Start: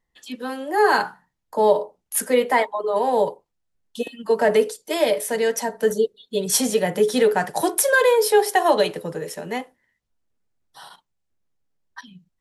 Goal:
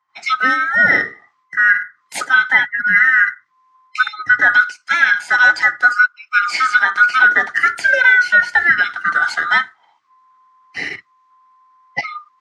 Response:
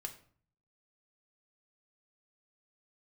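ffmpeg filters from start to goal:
-filter_complex "[0:a]afftfilt=real='real(if(lt(b,960),b+48*(1-2*mod(floor(b/48),2)),b),0)':imag='imag(if(lt(b,960),b+48*(1-2*mod(floor(b/48),2)),b),0)':win_size=2048:overlap=0.75,highpass=frequency=100:width=0.5412,highpass=frequency=100:width=1.3066,equalizer=frequency=310:width_type=q:width=4:gain=3,equalizer=frequency=530:width_type=q:width=4:gain=-9,equalizer=frequency=2100:width_type=q:width=4:gain=9,lowpass=frequency=6200:width=0.5412,lowpass=frequency=6200:width=1.3066,acrossover=split=3300[link_01][link_02];[link_02]acompressor=threshold=-35dB:ratio=4:attack=1:release=60[link_03];[link_01][link_03]amix=inputs=2:normalize=0,acrossover=split=200|1500|4000[link_04][link_05][link_06][link_07];[link_05]crystalizer=i=5:c=0[link_08];[link_04][link_08][link_06][link_07]amix=inputs=4:normalize=0,dynaudnorm=framelen=110:gausssize=3:maxgain=15dB,volume=-1dB"

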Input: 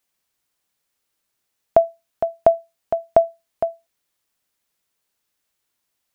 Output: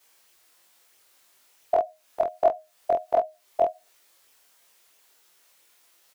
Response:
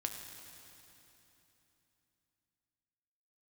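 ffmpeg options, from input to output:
-filter_complex "[0:a]afftfilt=real='re':imag='-im':win_size=2048:overlap=0.75,asplit=2[link_01][link_02];[link_02]alimiter=limit=-21.5dB:level=0:latency=1:release=30,volume=1dB[link_03];[link_01][link_03]amix=inputs=2:normalize=0,acompressor=threshold=-33dB:ratio=5,flanger=delay=17.5:depth=5.4:speed=1.5,firequalizer=gain_entry='entry(200,0);entry(370,10);entry(680,12)':delay=0.05:min_phase=1,volume=4dB"

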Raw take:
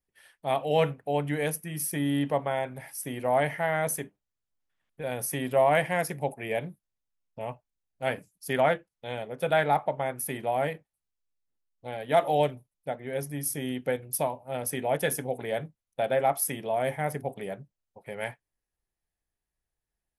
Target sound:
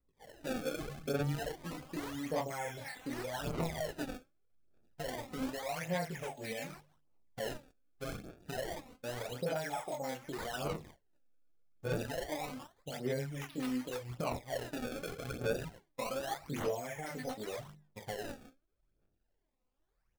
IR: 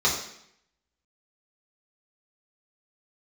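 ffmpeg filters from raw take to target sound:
-filter_complex "[0:a]acrossover=split=820|1800[link_01][link_02][link_03];[link_01]acompressor=threshold=-31dB:ratio=4[link_04];[link_02]acompressor=threshold=-40dB:ratio=4[link_05];[link_03]acompressor=threshold=-36dB:ratio=4[link_06];[link_04][link_05][link_06]amix=inputs=3:normalize=0,bandreject=frequency=50:width_type=h:width=6,bandreject=frequency=100:width_type=h:width=6,bandreject=frequency=150:width_type=h:width=6,bandreject=frequency=200:width_type=h:width=6,asplit=2[link_07][link_08];[link_08]acompressor=threshold=-39dB:ratio=6,volume=2dB[link_09];[link_07][link_09]amix=inputs=2:normalize=0,flanger=delay=18.5:depth=6.7:speed=0.17,acrossover=split=680|3300[link_10][link_11][link_12];[link_11]adelay=40[link_13];[link_12]adelay=190[link_14];[link_10][link_13][link_14]amix=inputs=3:normalize=0,alimiter=level_in=6.5dB:limit=-24dB:level=0:latency=1:release=273,volume=-6.5dB,asplit=2[link_15][link_16];[1:a]atrim=start_sample=2205,atrim=end_sample=6174[link_17];[link_16][link_17]afir=irnorm=-1:irlink=0,volume=-31.5dB[link_18];[link_15][link_18]amix=inputs=2:normalize=0,acrusher=samples=26:mix=1:aa=0.000001:lfo=1:lforange=41.6:lforate=0.28,aphaser=in_gain=1:out_gain=1:delay=4:decay=0.58:speed=0.84:type=sinusoidal,volume=-1dB"

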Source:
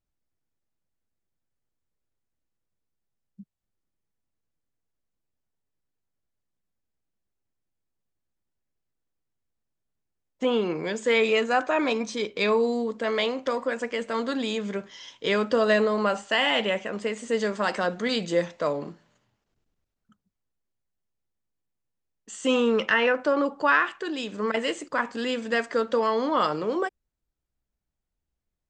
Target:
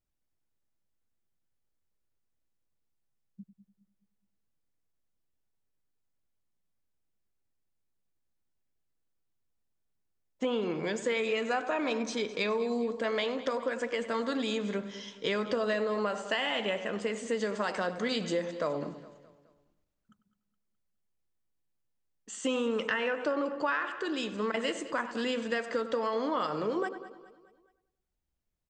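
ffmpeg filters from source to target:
ffmpeg -i in.wav -filter_complex "[0:a]asplit=2[link_01][link_02];[link_02]adelay=97,lowpass=frequency=1900:poles=1,volume=-13dB,asplit=2[link_03][link_04];[link_04]adelay=97,lowpass=frequency=1900:poles=1,volume=0.49,asplit=2[link_05][link_06];[link_06]adelay=97,lowpass=frequency=1900:poles=1,volume=0.49,asplit=2[link_07][link_08];[link_08]adelay=97,lowpass=frequency=1900:poles=1,volume=0.49,asplit=2[link_09][link_10];[link_10]adelay=97,lowpass=frequency=1900:poles=1,volume=0.49[link_11];[link_03][link_05][link_07][link_09][link_11]amix=inputs=5:normalize=0[link_12];[link_01][link_12]amix=inputs=2:normalize=0,acompressor=threshold=-25dB:ratio=6,asplit=2[link_13][link_14];[link_14]aecho=0:1:209|418|627|836:0.141|0.0664|0.0312|0.0147[link_15];[link_13][link_15]amix=inputs=2:normalize=0,volume=-2dB" out.wav

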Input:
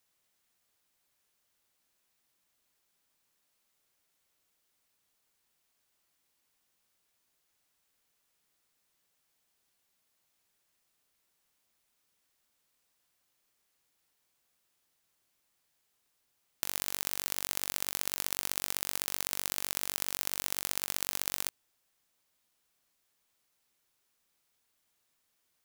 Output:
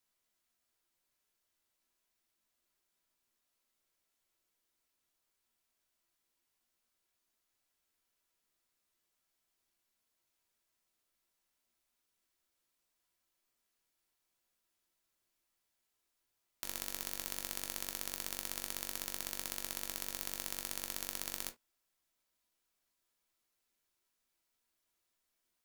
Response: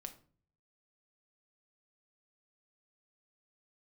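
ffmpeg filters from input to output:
-filter_complex "[1:a]atrim=start_sample=2205,atrim=end_sample=6174,asetrate=79380,aresample=44100[link_01];[0:a][link_01]afir=irnorm=-1:irlink=0,volume=3.5dB"

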